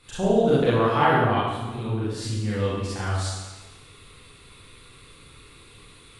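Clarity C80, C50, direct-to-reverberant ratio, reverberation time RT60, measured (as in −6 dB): 0.5 dB, −3.0 dB, −10.0 dB, 1.2 s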